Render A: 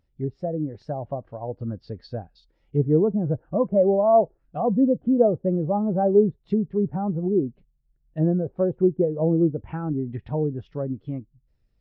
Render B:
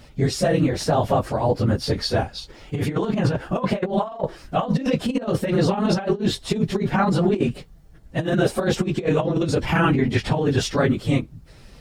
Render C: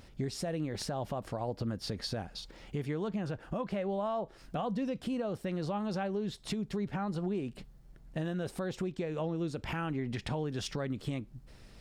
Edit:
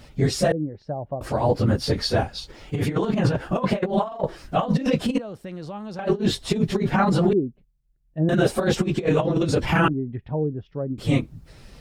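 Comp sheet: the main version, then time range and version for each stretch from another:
B
0.52–1.21 s: from A
5.19–5.99 s: from C
7.33–8.29 s: from A
9.88–10.98 s: from A

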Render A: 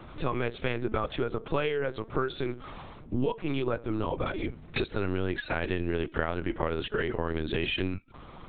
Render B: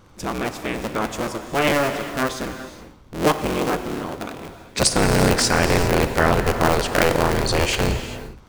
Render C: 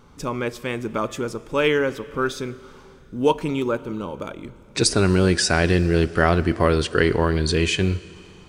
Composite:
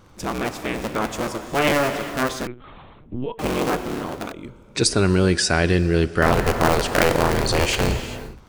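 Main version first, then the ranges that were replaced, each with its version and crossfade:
B
2.47–3.39 s: from A
4.32–6.22 s: from C

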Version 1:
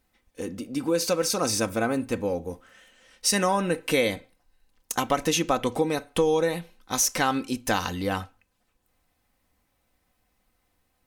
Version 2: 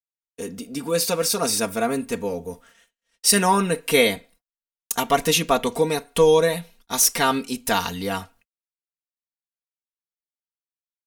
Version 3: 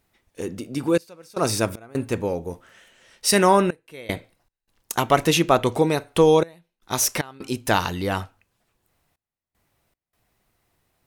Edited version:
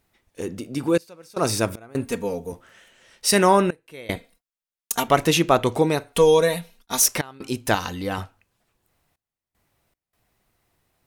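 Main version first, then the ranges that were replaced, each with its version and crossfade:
3
2.05–2.52 s: from 2
4.16–5.08 s: from 2
6.13–7.06 s: from 2
7.75–8.18 s: from 1

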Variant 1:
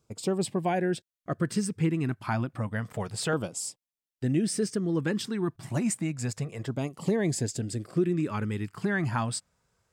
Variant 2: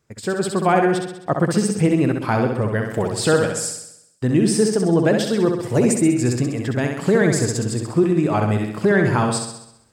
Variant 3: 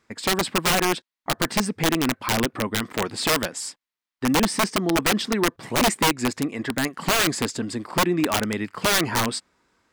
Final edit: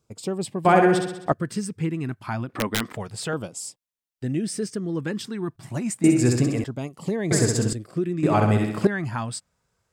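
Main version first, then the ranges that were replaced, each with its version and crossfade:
1
0.65–1.32 s: from 2
2.49–2.95 s: from 3
6.04–6.64 s: from 2
7.31–7.73 s: from 2
8.23–8.87 s: from 2

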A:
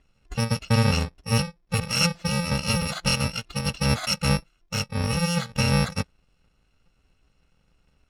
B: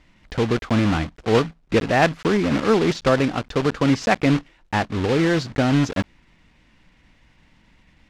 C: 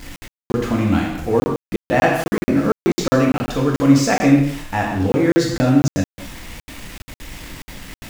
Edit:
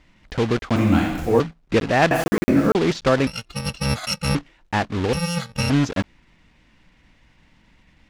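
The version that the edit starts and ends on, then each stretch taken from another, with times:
B
0.76–1.40 s: from C
2.11–2.75 s: from C
3.27–4.35 s: from A
5.13–5.70 s: from A

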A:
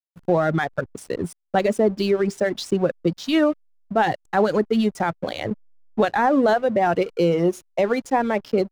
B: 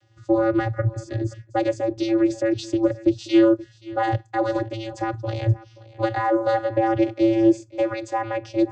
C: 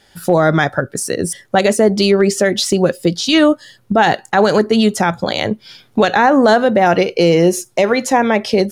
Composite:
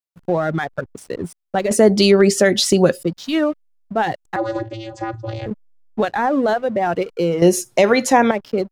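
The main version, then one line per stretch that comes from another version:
A
1.71–3.03 s: from C
4.36–5.46 s: from B
7.42–8.31 s: from C

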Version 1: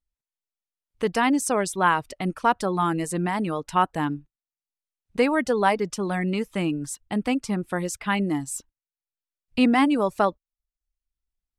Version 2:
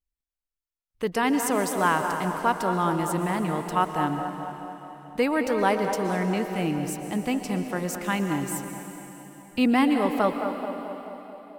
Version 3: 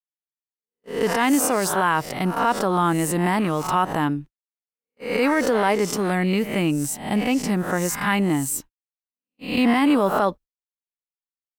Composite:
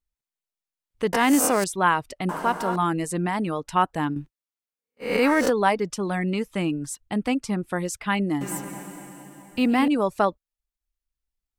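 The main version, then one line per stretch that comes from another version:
1
1.13–1.64 s: from 3
2.29–2.76 s: from 2
4.16–5.50 s: from 3
8.41–9.88 s: from 2

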